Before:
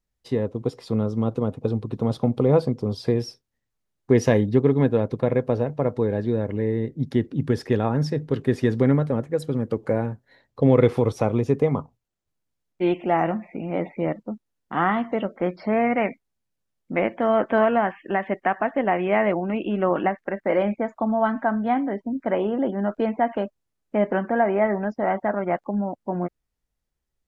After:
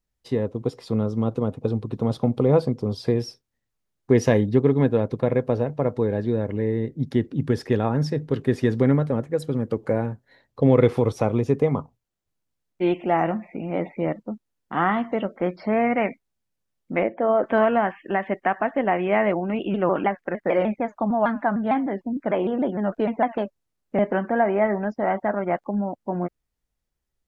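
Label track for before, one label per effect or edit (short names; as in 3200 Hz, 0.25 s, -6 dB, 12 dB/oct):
17.030000	17.440000	formant sharpening exponent 1.5
19.590000	23.990000	shaped vibrato saw down 6.6 Hz, depth 160 cents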